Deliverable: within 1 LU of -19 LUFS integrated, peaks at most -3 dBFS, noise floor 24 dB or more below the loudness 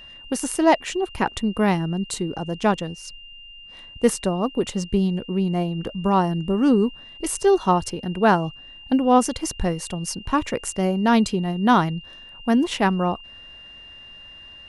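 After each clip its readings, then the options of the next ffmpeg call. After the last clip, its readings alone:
steady tone 2800 Hz; tone level -41 dBFS; loudness -22.0 LUFS; peak -4.5 dBFS; loudness target -19.0 LUFS
-> -af "bandreject=f=2.8k:w=30"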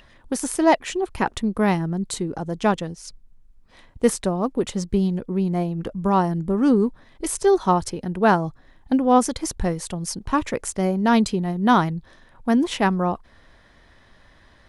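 steady tone none; loudness -22.0 LUFS; peak -4.5 dBFS; loudness target -19.0 LUFS
-> -af "volume=3dB,alimiter=limit=-3dB:level=0:latency=1"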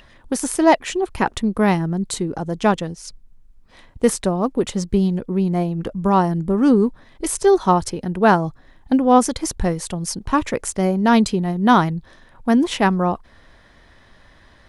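loudness -19.5 LUFS; peak -3.0 dBFS; noise floor -51 dBFS

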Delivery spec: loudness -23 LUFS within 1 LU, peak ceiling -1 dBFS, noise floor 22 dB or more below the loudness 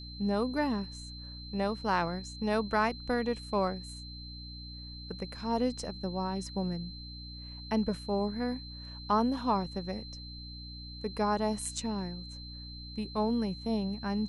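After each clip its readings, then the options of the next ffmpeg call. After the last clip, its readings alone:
hum 60 Hz; harmonics up to 300 Hz; hum level -44 dBFS; steady tone 4100 Hz; tone level -46 dBFS; loudness -33.5 LUFS; peak -16.0 dBFS; loudness target -23.0 LUFS
-> -af "bandreject=f=60:t=h:w=4,bandreject=f=120:t=h:w=4,bandreject=f=180:t=h:w=4,bandreject=f=240:t=h:w=4,bandreject=f=300:t=h:w=4"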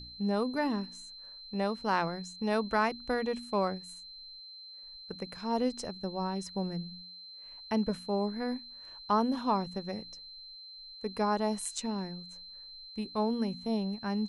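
hum none; steady tone 4100 Hz; tone level -46 dBFS
-> -af "bandreject=f=4.1k:w=30"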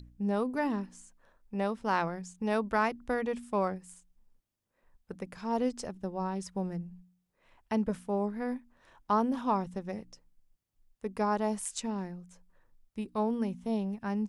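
steady tone none; loudness -33.0 LUFS; peak -16.0 dBFS; loudness target -23.0 LUFS
-> -af "volume=10dB"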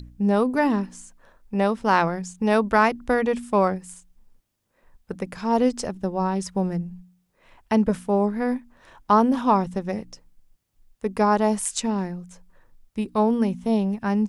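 loudness -23.0 LUFS; peak -6.0 dBFS; noise floor -71 dBFS

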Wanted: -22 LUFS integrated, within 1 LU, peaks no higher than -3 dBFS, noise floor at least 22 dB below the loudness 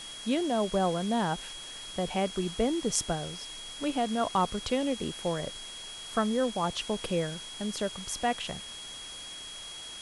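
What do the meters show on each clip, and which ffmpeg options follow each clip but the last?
steady tone 3300 Hz; tone level -42 dBFS; noise floor -43 dBFS; noise floor target -54 dBFS; loudness -31.5 LUFS; peak -10.5 dBFS; loudness target -22.0 LUFS
-> -af "bandreject=f=3.3k:w=30"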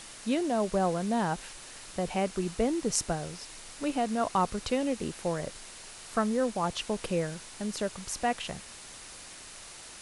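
steady tone none; noise floor -47 dBFS; noise floor target -53 dBFS
-> -af "afftdn=nr=6:nf=-47"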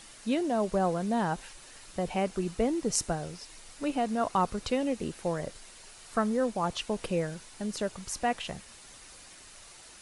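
noise floor -51 dBFS; noise floor target -54 dBFS
-> -af "afftdn=nr=6:nf=-51"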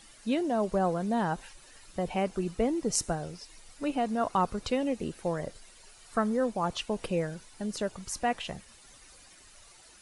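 noise floor -55 dBFS; loudness -31.5 LUFS; peak -11.0 dBFS; loudness target -22.0 LUFS
-> -af "volume=9.5dB,alimiter=limit=-3dB:level=0:latency=1"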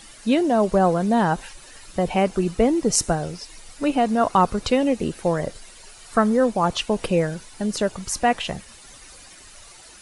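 loudness -22.0 LUFS; peak -3.0 dBFS; noise floor -46 dBFS

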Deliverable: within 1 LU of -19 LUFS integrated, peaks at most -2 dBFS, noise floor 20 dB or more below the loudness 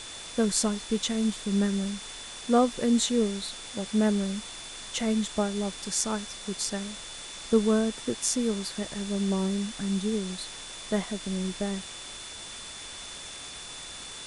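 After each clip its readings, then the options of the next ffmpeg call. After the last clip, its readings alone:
steady tone 3500 Hz; tone level -44 dBFS; noise floor -42 dBFS; noise floor target -50 dBFS; loudness -29.5 LUFS; peak -7.5 dBFS; loudness target -19.0 LUFS
-> -af "bandreject=f=3.5k:w=30"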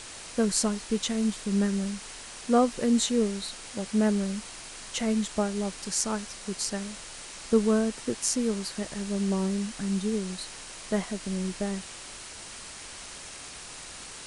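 steady tone none; noise floor -43 dBFS; noise floor target -49 dBFS
-> -af "afftdn=nr=6:nf=-43"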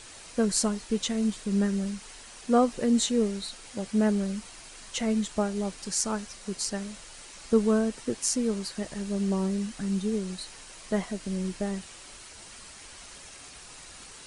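noise floor -47 dBFS; noise floor target -49 dBFS
-> -af "afftdn=nr=6:nf=-47"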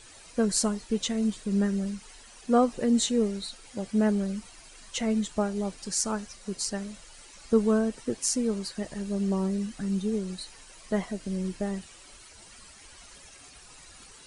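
noise floor -51 dBFS; loudness -28.5 LUFS; peak -8.0 dBFS; loudness target -19.0 LUFS
-> -af "volume=9.5dB,alimiter=limit=-2dB:level=0:latency=1"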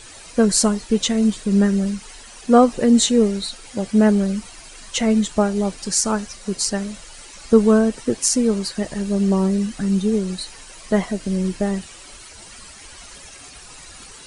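loudness -19.5 LUFS; peak -2.0 dBFS; noise floor -42 dBFS

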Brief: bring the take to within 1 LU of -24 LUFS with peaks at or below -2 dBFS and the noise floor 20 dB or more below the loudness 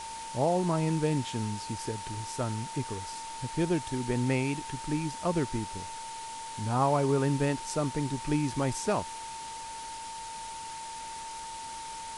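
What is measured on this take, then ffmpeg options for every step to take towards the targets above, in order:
steady tone 900 Hz; tone level -39 dBFS; noise floor -41 dBFS; noise floor target -52 dBFS; loudness -32.0 LUFS; peak -14.0 dBFS; loudness target -24.0 LUFS
-> -af "bandreject=f=900:w=30"
-af "afftdn=nr=11:nf=-41"
-af "volume=8dB"

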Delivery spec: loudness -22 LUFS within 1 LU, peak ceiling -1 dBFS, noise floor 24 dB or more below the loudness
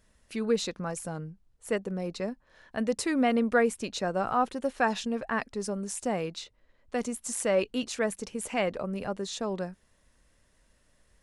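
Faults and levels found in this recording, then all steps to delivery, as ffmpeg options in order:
loudness -30.5 LUFS; peak -12.5 dBFS; loudness target -22.0 LUFS
-> -af "volume=8.5dB"

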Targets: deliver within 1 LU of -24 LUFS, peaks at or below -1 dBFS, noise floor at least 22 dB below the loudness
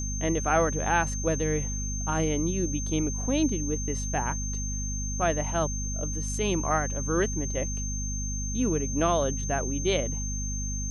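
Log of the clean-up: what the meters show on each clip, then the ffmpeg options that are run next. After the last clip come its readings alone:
hum 50 Hz; harmonics up to 250 Hz; hum level -30 dBFS; steady tone 6300 Hz; tone level -34 dBFS; loudness -28.0 LUFS; peak -10.5 dBFS; loudness target -24.0 LUFS
-> -af "bandreject=f=50:t=h:w=4,bandreject=f=100:t=h:w=4,bandreject=f=150:t=h:w=4,bandreject=f=200:t=h:w=4,bandreject=f=250:t=h:w=4"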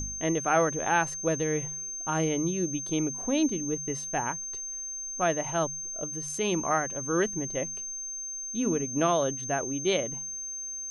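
hum none; steady tone 6300 Hz; tone level -34 dBFS
-> -af "bandreject=f=6.3k:w=30"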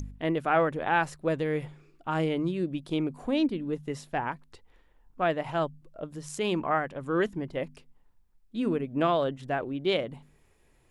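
steady tone none; loudness -29.5 LUFS; peak -11.5 dBFS; loudness target -24.0 LUFS
-> -af "volume=5.5dB"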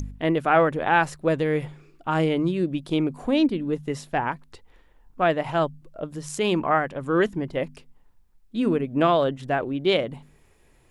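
loudness -24.0 LUFS; peak -6.0 dBFS; noise floor -58 dBFS

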